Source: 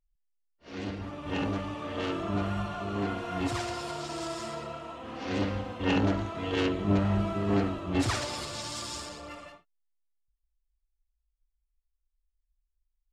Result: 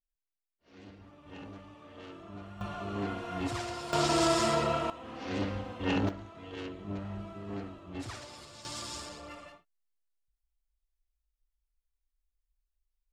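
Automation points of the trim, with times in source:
-15.5 dB
from 2.61 s -3.5 dB
from 3.93 s +9.5 dB
from 4.90 s -3.5 dB
from 6.09 s -13 dB
from 8.65 s -3 dB

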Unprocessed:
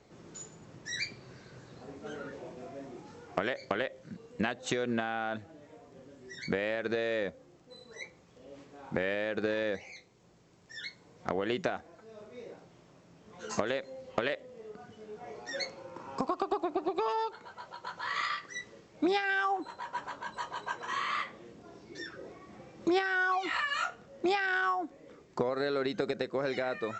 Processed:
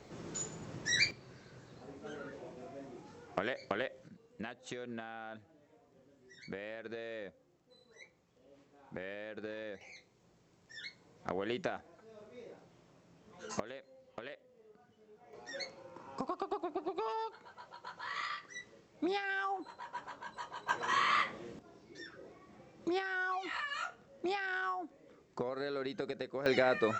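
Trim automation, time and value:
+5.5 dB
from 1.11 s -4 dB
from 4.08 s -12 dB
from 9.81 s -5 dB
from 13.60 s -15 dB
from 15.33 s -6.5 dB
from 20.69 s +3 dB
from 21.59 s -7 dB
from 26.46 s +4 dB

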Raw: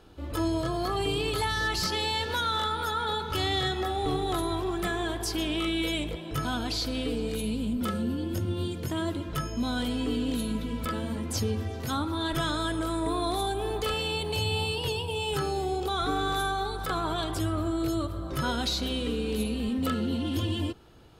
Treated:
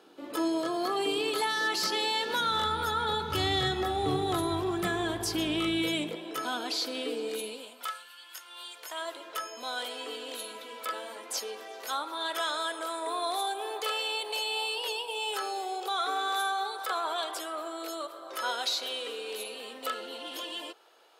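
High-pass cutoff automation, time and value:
high-pass 24 dB/octave
2.22 s 250 Hz
2.67 s 80 Hz
5.72 s 80 Hz
6.37 s 320 Hz
7.40 s 320 Hz
8.13 s 1.3 kHz
9.28 s 500 Hz

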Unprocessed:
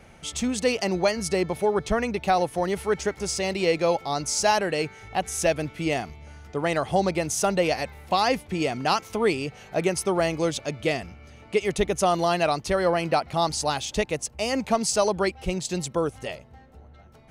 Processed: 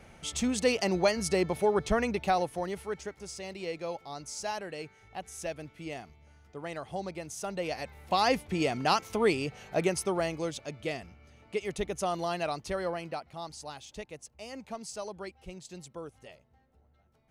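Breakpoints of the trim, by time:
2.11 s -3 dB
3.17 s -14 dB
7.41 s -14 dB
8.27 s -3 dB
9.75 s -3 dB
10.52 s -9.5 dB
12.78 s -9.5 dB
13.33 s -17 dB

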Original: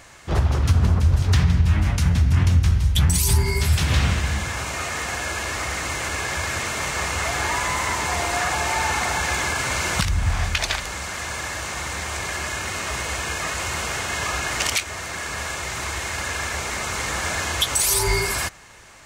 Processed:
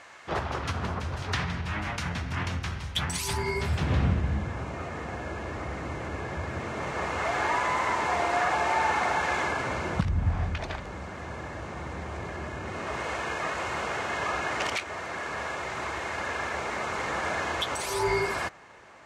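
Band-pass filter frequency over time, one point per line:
band-pass filter, Q 0.5
3.26 s 1.2 kHz
4.15 s 210 Hz
6.53 s 210 Hz
7.37 s 620 Hz
9.39 s 620 Hz
10.01 s 220 Hz
12.60 s 220 Hz
13.07 s 580 Hz

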